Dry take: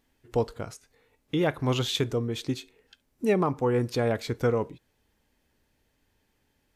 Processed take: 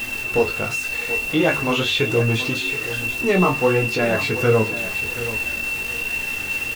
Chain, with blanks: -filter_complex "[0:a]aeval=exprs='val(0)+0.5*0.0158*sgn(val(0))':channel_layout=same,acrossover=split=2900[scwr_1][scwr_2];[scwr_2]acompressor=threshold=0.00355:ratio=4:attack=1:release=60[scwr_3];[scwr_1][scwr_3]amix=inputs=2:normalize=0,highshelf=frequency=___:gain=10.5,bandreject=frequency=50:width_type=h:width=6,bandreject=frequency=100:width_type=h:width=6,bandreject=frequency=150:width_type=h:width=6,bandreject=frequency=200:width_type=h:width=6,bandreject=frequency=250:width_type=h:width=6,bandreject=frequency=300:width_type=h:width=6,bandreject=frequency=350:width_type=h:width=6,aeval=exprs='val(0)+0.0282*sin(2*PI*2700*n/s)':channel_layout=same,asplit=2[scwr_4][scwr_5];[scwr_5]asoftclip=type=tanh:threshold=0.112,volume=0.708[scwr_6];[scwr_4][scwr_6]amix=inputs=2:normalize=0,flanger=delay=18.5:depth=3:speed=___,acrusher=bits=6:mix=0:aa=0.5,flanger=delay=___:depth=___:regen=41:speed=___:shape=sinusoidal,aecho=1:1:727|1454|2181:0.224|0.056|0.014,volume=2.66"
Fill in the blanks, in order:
2.1k, 1.3, 8.6, 8.4, 0.44